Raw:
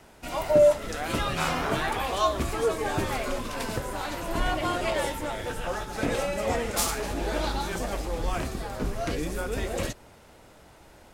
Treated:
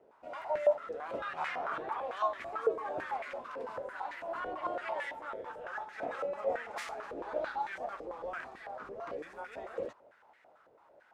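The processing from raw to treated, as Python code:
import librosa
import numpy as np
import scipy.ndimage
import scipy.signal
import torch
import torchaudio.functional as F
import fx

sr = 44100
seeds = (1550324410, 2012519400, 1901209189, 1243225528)

y = fx.filter_held_bandpass(x, sr, hz=9.0, low_hz=480.0, high_hz=1900.0)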